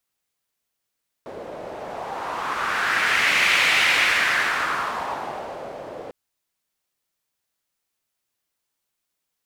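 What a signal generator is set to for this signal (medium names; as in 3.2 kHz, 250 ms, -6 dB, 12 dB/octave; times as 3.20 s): wind-like swept noise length 4.85 s, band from 540 Hz, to 2.3 kHz, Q 2.6, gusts 1, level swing 17.5 dB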